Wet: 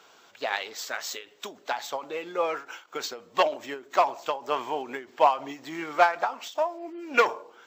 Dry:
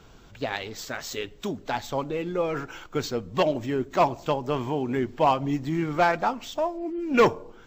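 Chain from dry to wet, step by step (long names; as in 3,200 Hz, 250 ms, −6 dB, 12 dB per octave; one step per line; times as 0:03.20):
dynamic equaliser 1,100 Hz, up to +4 dB, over −30 dBFS, Q 0.72
high-pass filter 600 Hz 12 dB per octave
every ending faded ahead of time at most 170 dB per second
level +2 dB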